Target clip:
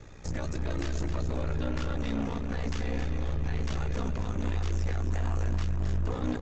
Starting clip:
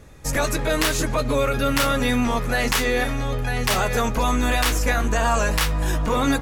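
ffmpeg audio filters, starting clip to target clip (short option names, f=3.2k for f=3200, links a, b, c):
-filter_complex "[0:a]acrossover=split=340[a][b];[b]acompressor=threshold=-38dB:ratio=3[c];[a][c]amix=inputs=2:normalize=0,aresample=16000,asoftclip=type=tanh:threshold=-26.5dB,aresample=44100,flanger=delay=2.3:depth=4.8:regen=-45:speed=1.3:shape=sinusoidal,aecho=1:1:269|538|807|1076:0.376|0.147|0.0572|0.0223,aeval=exprs='val(0)*sin(2*PI*30*n/s)':c=same,volume=4.5dB"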